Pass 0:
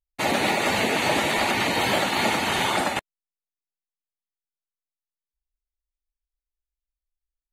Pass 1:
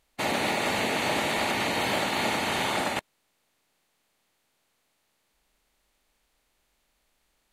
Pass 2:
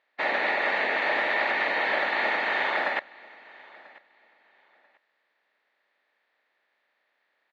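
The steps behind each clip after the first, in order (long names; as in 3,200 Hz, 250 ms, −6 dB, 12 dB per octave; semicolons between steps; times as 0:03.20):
compressor on every frequency bin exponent 0.6; level −7 dB
loudspeaker in its box 460–3,600 Hz, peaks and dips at 570 Hz +3 dB, 1,800 Hz +10 dB, 3,000 Hz −5 dB; repeating echo 990 ms, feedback 23%, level −23 dB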